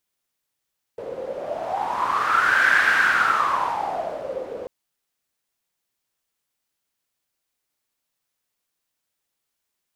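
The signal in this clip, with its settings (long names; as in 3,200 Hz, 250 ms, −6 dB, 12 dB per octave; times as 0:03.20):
wind from filtered noise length 3.69 s, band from 490 Hz, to 1,600 Hz, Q 9.3, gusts 1, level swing 14.5 dB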